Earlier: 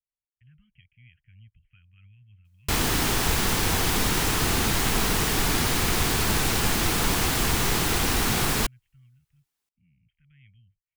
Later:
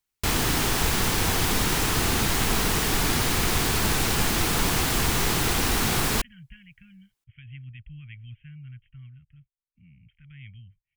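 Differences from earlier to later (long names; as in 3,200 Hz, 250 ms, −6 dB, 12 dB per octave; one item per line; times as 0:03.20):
speech +11.5 dB
background: entry −2.45 s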